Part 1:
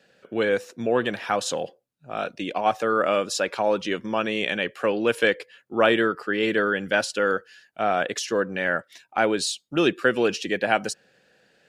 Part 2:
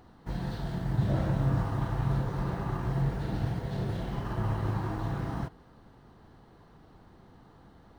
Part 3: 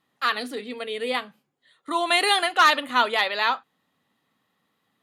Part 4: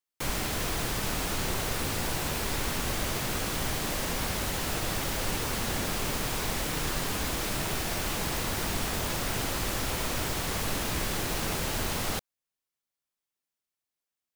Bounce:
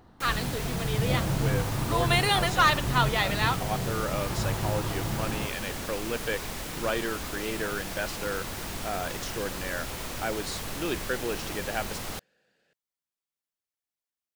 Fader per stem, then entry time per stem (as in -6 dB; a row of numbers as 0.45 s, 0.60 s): -10.5 dB, 0.0 dB, -4.5 dB, -5.0 dB; 1.05 s, 0.00 s, 0.00 s, 0.00 s